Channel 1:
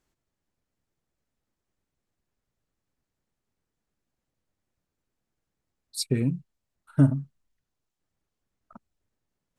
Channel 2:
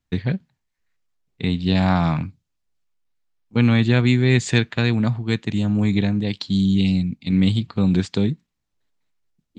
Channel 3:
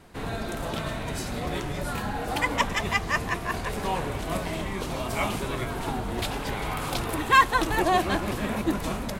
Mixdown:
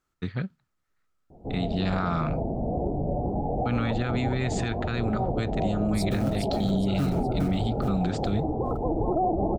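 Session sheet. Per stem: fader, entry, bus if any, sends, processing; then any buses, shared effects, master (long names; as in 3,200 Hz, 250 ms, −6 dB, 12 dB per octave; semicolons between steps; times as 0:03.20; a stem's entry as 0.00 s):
−3.5 dB, 0.00 s, no send, echo send −6.5 dB, floating-point word with a short mantissa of 2 bits
−8.5 dB, 0.10 s, no send, no echo send, automatic gain control gain up to 4 dB
+2.5 dB, 1.30 s, no send, echo send −3.5 dB, Butterworth low-pass 810 Hz 72 dB per octave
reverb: not used
echo: repeating echo 415 ms, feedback 38%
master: parametric band 1,300 Hz +15 dB 0.29 octaves; brickwall limiter −17 dBFS, peak gain reduction 9.5 dB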